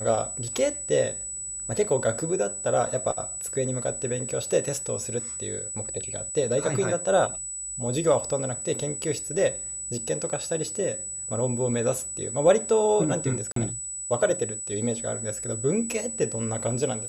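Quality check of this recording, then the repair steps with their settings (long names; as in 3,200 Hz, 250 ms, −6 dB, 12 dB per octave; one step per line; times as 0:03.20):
whistle 7,900 Hz −32 dBFS
0:13.52–0:13.56: drop-out 43 ms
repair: notch filter 7,900 Hz, Q 30
repair the gap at 0:13.52, 43 ms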